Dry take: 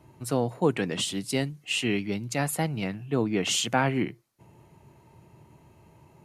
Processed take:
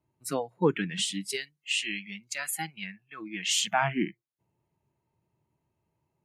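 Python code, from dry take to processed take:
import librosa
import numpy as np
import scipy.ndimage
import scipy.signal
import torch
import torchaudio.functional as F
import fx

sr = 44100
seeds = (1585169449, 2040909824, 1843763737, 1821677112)

y = fx.low_shelf(x, sr, hz=470.0, db=-10.5, at=(1.36, 3.48))
y = fx.noise_reduce_blind(y, sr, reduce_db=23)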